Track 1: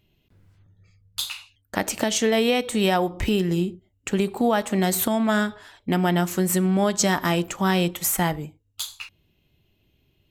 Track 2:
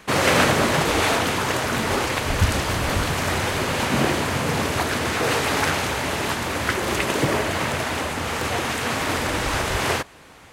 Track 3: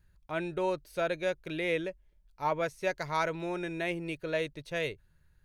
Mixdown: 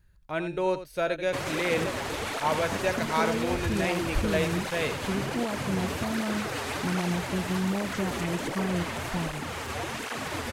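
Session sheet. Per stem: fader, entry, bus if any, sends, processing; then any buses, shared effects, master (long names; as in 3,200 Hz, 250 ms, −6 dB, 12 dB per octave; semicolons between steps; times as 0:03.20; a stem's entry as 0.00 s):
−16.5 dB, 0.95 s, no send, no echo send, spectral tilt −4 dB per octave
−6.0 dB, 1.25 s, no send, no echo send, brickwall limiter −14 dBFS, peak gain reduction 9.5 dB; through-zero flanger with one copy inverted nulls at 1.3 Hz, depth 6.8 ms
+3.0 dB, 0.00 s, no send, echo send −11 dB, no processing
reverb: not used
echo: single-tap delay 86 ms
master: no processing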